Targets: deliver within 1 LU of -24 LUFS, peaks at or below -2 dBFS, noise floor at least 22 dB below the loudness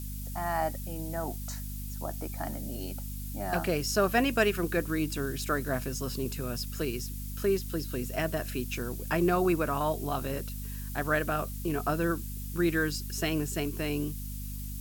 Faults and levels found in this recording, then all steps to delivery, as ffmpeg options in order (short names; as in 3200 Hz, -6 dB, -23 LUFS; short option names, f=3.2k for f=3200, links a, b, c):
hum 50 Hz; harmonics up to 250 Hz; hum level -36 dBFS; noise floor -38 dBFS; noise floor target -54 dBFS; loudness -31.5 LUFS; peak -11.0 dBFS; loudness target -24.0 LUFS
-> -af "bandreject=f=50:t=h:w=4,bandreject=f=100:t=h:w=4,bandreject=f=150:t=h:w=4,bandreject=f=200:t=h:w=4,bandreject=f=250:t=h:w=4"
-af "afftdn=nr=16:nf=-38"
-af "volume=7.5dB"